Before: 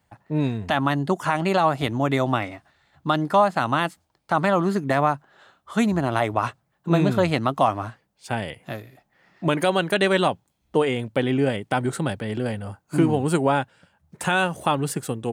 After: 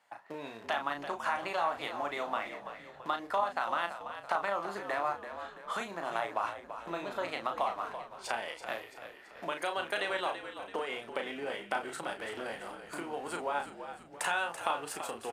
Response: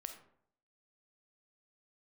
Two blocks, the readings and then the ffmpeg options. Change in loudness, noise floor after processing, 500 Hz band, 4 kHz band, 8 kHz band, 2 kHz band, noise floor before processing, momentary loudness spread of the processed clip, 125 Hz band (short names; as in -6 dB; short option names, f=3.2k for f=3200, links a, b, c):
-13.0 dB, -52 dBFS, -13.5 dB, -10.0 dB, -9.0 dB, -8.5 dB, -71 dBFS, 11 LU, -31.0 dB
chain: -filter_complex "[0:a]asplit=2[a][b];[b]aeval=exprs='val(0)*gte(abs(val(0)),0.0398)':c=same,volume=-11.5dB[c];[a][c]amix=inputs=2:normalize=0,acompressor=threshold=-33dB:ratio=4,aresample=32000,aresample=44100,highpass=690,highshelf=f=3.9k:g=-8,asplit=2[d][e];[e]adelay=35,volume=-6dB[f];[d][f]amix=inputs=2:normalize=0,asplit=2[g][h];[h]asplit=5[i][j][k][l][m];[i]adelay=334,afreqshift=-57,volume=-10.5dB[n];[j]adelay=668,afreqshift=-114,volume=-16.9dB[o];[k]adelay=1002,afreqshift=-171,volume=-23.3dB[p];[l]adelay=1336,afreqshift=-228,volume=-29.6dB[q];[m]adelay=1670,afreqshift=-285,volume=-36dB[r];[n][o][p][q][r]amix=inputs=5:normalize=0[s];[g][s]amix=inputs=2:normalize=0,volume=4dB"